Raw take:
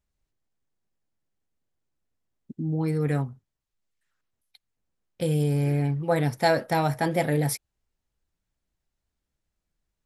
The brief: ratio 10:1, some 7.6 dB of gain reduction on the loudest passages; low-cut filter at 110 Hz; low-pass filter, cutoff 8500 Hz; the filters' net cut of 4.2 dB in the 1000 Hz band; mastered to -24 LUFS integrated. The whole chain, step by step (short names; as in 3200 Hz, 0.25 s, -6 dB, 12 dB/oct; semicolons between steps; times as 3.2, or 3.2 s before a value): HPF 110 Hz; LPF 8500 Hz; bell 1000 Hz -6 dB; compressor 10:1, threshold -27 dBFS; gain +9 dB